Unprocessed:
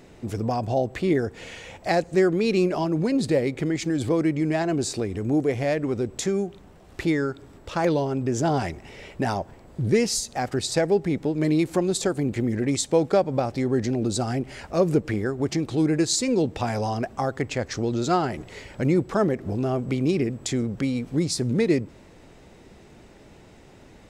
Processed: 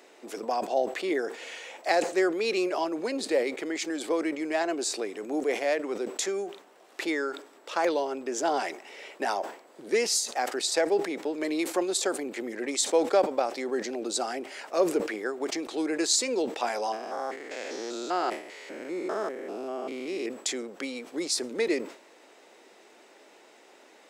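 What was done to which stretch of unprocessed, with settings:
16.92–20.26 stepped spectrum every 0.2 s
whole clip: Bessel high-pass 490 Hz, order 6; sustainer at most 120 dB/s

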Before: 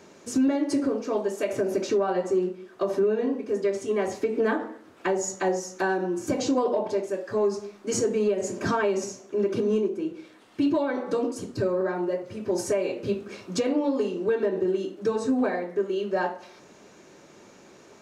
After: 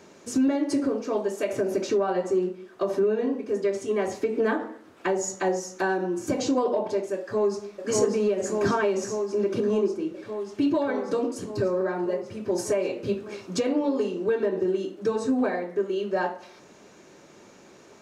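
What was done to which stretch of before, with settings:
7.19–7.87 echo throw 0.59 s, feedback 80%, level -1 dB

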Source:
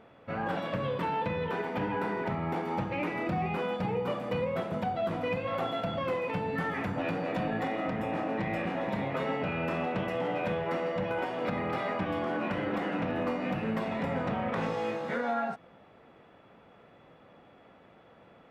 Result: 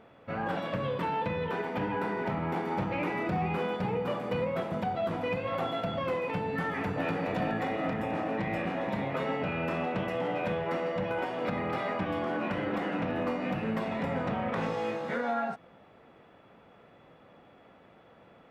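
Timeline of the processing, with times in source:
1.65–2.7 echo throw 0.53 s, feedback 80%, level -9.5 dB
6.38–7.09 echo throw 0.42 s, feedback 65%, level -7 dB

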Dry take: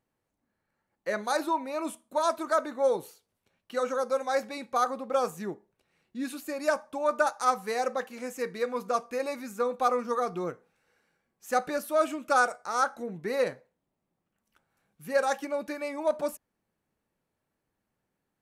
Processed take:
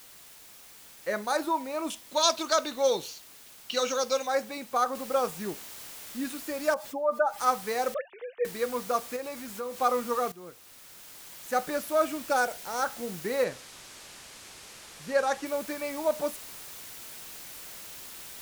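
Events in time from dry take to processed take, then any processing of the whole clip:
1.9–4.27 band shelf 4100 Hz +16 dB
4.95 noise floor step -51 dB -44 dB
6.74–7.39 spectral contrast raised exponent 1.7
7.94–8.45 sine-wave speech
9.16–9.77 compressor 2:1, threshold -37 dBFS
10.32–11.77 fade in, from -16 dB
12.29–12.85 bell 1200 Hz -12 dB 0.28 oct
13.44–15.46 LPF 8500 Hz

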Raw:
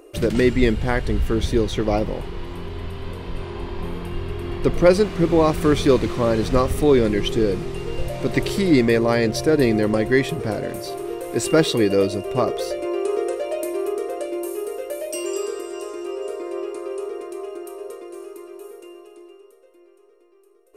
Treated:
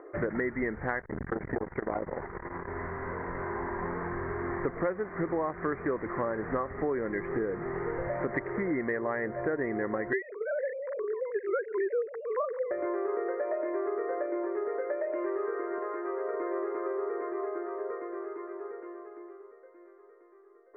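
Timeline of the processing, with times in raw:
1–2.68 core saturation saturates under 350 Hz
10.13–12.71 sine-wave speech
15.78–16.34 HPF 380 Hz 6 dB/oct
whole clip: steep low-pass 2000 Hz 96 dB/oct; tilt +4 dB/oct; compressor 6:1, threshold -32 dBFS; gain +3.5 dB

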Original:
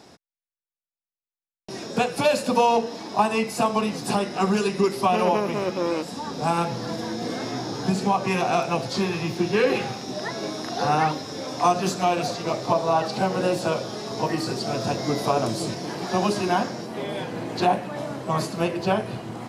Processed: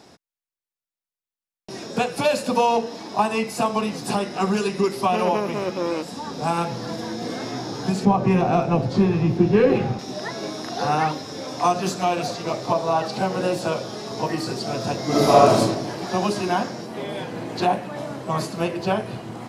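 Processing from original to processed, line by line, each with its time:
8.05–9.99 tilt -3.5 dB/oct
15.07–15.58 reverb throw, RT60 0.97 s, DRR -8 dB

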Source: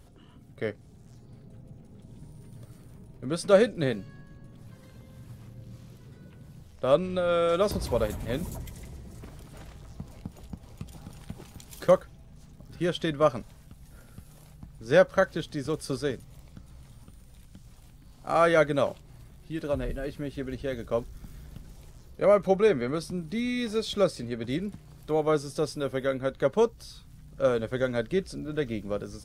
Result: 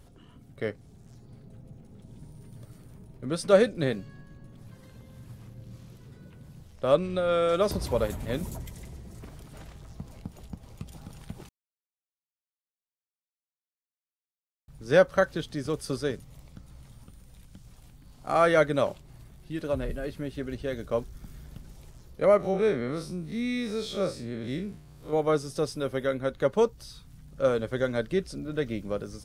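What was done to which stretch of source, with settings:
11.49–14.68 mute
22.37–25.13 time blur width 89 ms

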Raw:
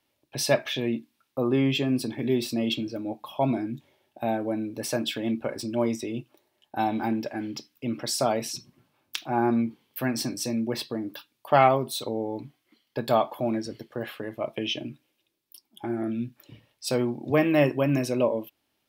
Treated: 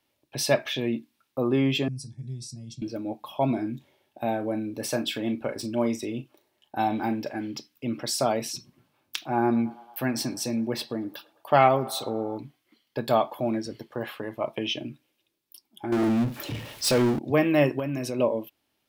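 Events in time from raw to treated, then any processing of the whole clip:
1.88–2.82 EQ curve 170 Hz 0 dB, 240 Hz -21 dB, 390 Hz -27 dB, 3000 Hz -28 dB, 5700 Hz 0 dB, 10000 Hz -3 dB, 14000 Hz -30 dB
3.54–7.39 doubler 38 ms -11.5 dB
9.19–12.38 narrowing echo 0.11 s, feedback 81%, level -20 dB
13.78–14.72 bell 960 Hz +7 dB 0.55 oct
15.92–17.19 power-law curve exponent 0.5
17.79–18.19 compressor 4:1, threshold -26 dBFS

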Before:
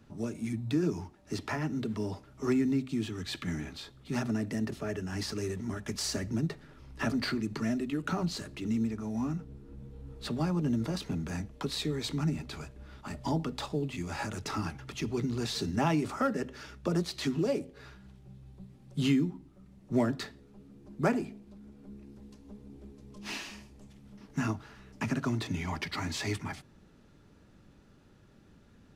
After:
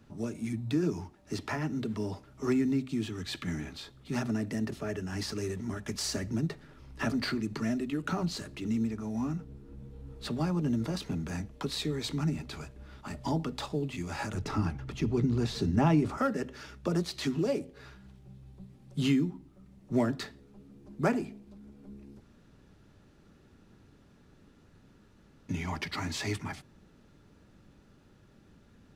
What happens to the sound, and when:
14.34–16.18 tilt -2 dB/oct
22.2–25.49 room tone

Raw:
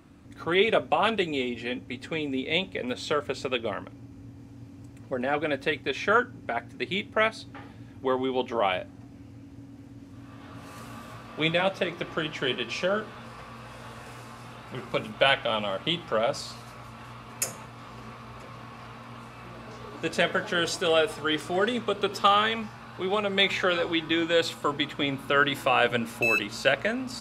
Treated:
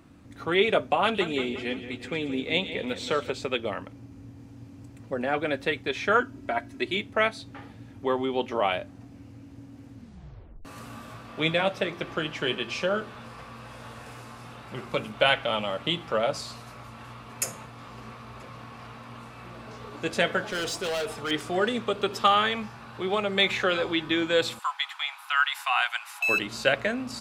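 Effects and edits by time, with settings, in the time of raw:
1.03–3.3 split-band echo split 2700 Hz, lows 0.175 s, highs 0.115 s, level -11 dB
6.2–6.97 comb 3.1 ms, depth 61%
9.94 tape stop 0.71 s
20.47–21.31 hard clip -27 dBFS
24.59–26.29 steep high-pass 760 Hz 72 dB/oct

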